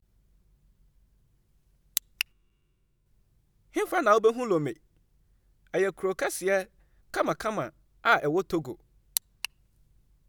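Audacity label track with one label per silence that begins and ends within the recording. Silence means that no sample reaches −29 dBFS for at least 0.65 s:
2.210000	3.760000	silence
4.710000	5.740000	silence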